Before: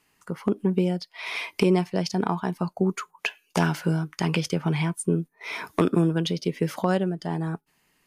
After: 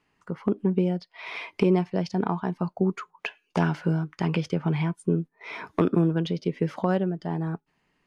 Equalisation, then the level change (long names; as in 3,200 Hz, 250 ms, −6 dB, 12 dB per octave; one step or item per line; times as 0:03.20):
head-to-tape spacing loss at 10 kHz 20 dB
0.0 dB